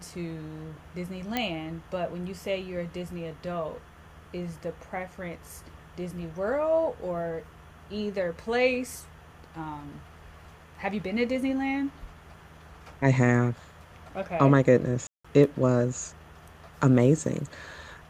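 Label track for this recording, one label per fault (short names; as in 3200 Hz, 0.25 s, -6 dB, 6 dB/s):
1.370000	1.370000	pop -13 dBFS
15.070000	15.240000	gap 0.175 s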